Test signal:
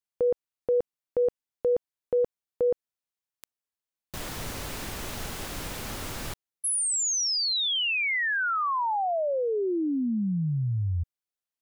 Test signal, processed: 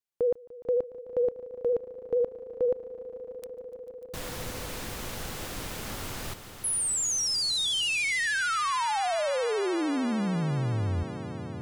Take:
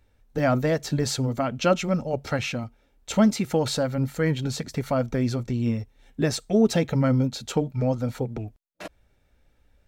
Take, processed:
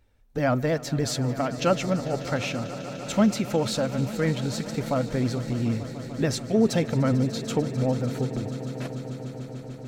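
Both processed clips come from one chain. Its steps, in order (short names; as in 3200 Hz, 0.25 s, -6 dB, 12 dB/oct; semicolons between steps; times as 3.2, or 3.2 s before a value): vibrato 13 Hz 50 cents; swelling echo 0.148 s, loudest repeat 5, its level -17.5 dB; gain -1.5 dB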